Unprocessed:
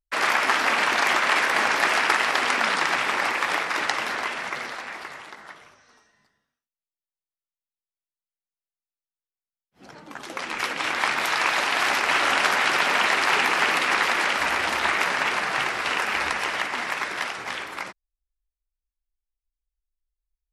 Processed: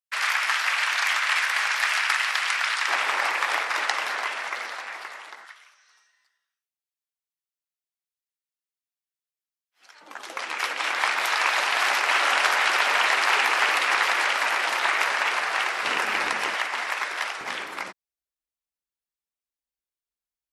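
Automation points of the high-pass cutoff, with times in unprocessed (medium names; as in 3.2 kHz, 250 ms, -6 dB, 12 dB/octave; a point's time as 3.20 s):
1.4 kHz
from 2.88 s 560 Hz
from 5.45 s 1.5 kHz
from 10.01 s 520 Hz
from 15.83 s 160 Hz
from 16.54 s 530 Hz
from 17.41 s 160 Hz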